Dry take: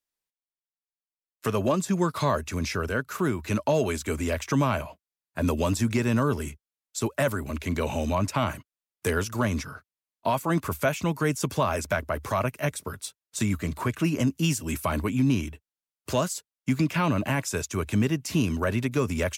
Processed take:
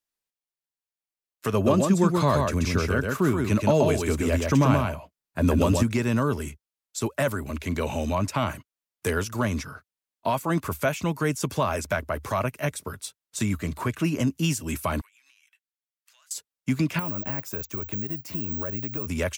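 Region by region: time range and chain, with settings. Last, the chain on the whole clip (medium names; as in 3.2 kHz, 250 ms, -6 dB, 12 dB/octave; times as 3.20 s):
1.53–5.83 s: bass shelf 490 Hz +4.5 dB + delay 131 ms -3.5 dB
15.01–16.31 s: ladder high-pass 1.3 kHz, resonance 25% + compression 16:1, threshold -56 dBFS
16.99–19.07 s: treble shelf 2.2 kHz -11.5 dB + compression 10:1, threshold -29 dBFS + careless resampling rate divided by 2×, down filtered, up zero stuff
whole clip: none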